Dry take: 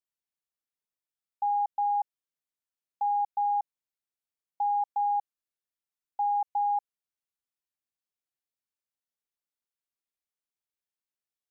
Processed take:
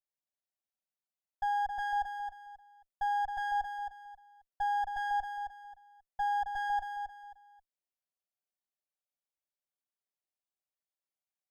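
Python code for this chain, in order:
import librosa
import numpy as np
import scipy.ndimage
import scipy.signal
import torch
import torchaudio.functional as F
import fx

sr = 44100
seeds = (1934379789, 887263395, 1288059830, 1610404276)

y = fx.lower_of_two(x, sr, delay_ms=5.2)
y = fx.peak_eq(y, sr, hz=670.0, db=10.5, octaves=0.71)
y = fx.echo_feedback(y, sr, ms=268, feedback_pct=28, wet_db=-7)
y = y * 10.0 ** (-7.5 / 20.0)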